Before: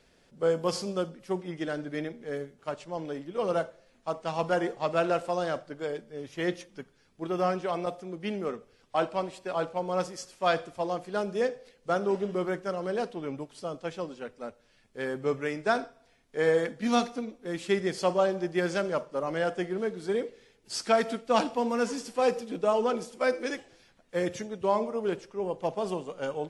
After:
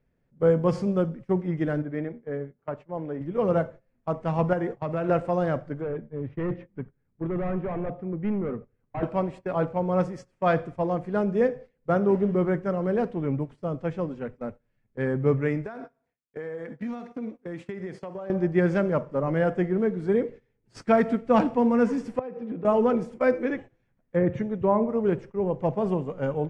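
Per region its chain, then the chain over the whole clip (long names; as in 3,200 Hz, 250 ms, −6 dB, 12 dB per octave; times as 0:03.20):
0:01.82–0:03.21: low-pass filter 1,600 Hz 6 dB per octave + low-shelf EQ 220 Hz −11 dB
0:04.53–0:05.09: downward expander −36 dBFS + downward compressor 2.5 to 1, threshold −31 dBFS
0:05.81–0:09.03: gain into a clipping stage and back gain 31 dB + high-frequency loss of the air 380 metres
0:15.66–0:18.30: noise gate with hold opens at −52 dBFS, closes at −58 dBFS + high-pass filter 290 Hz 6 dB per octave + downward compressor 16 to 1, threshold −36 dBFS
0:22.19–0:22.65: high-pass filter 150 Hz + downward compressor 20 to 1, threshold −36 dBFS + high-frequency loss of the air 250 metres
0:23.38–0:24.89: treble cut that deepens with the level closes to 1,800 Hz, closed at −24.5 dBFS + notch filter 4,900 Hz, Q 5.8
whole clip: RIAA equalisation playback; noise gate −41 dBFS, range −17 dB; octave-band graphic EQ 125/250/500/1,000/2,000/4,000/8,000 Hz +10/+5/+5/+5/+9/−3/+4 dB; level −5.5 dB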